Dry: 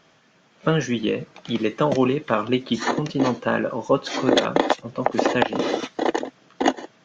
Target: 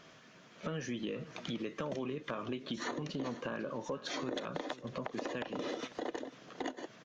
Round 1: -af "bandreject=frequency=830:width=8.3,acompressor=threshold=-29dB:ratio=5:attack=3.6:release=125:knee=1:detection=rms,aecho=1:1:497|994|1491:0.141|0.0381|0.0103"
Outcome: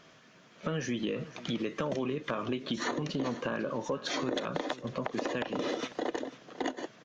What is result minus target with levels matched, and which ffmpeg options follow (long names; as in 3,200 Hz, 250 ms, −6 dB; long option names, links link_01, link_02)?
downward compressor: peak gain reduction −5.5 dB
-af "bandreject=frequency=830:width=8.3,acompressor=threshold=-36dB:ratio=5:attack=3.6:release=125:knee=1:detection=rms,aecho=1:1:497|994|1491:0.141|0.0381|0.0103"